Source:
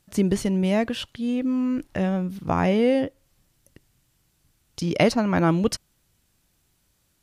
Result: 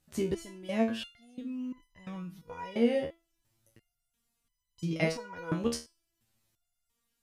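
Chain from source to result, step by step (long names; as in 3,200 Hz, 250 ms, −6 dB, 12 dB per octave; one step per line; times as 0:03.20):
step-sequenced resonator 2.9 Hz 78–1,000 Hz
level +1.5 dB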